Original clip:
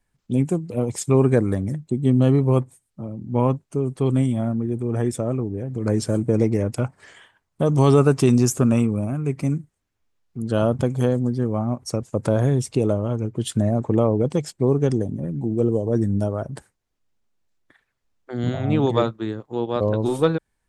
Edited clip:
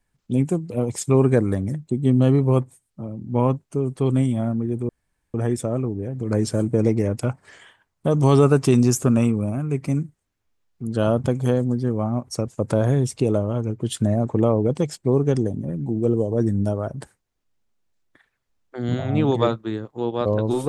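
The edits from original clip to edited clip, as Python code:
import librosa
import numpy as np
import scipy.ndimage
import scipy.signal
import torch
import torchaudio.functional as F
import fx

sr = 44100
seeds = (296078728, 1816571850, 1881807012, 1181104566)

y = fx.edit(x, sr, fx.insert_room_tone(at_s=4.89, length_s=0.45), tone=tone)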